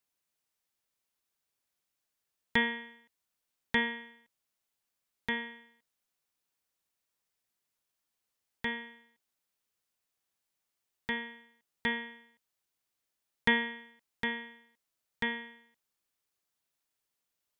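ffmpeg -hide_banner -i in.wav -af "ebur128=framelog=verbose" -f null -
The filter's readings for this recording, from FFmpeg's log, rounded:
Integrated loudness:
  I:         -34.0 LUFS
  Threshold: -45.7 LUFS
Loudness range:
  LRA:         9.9 LU
  Threshold: -58.9 LUFS
  LRA low:   -45.7 LUFS
  LRA high:  -35.7 LUFS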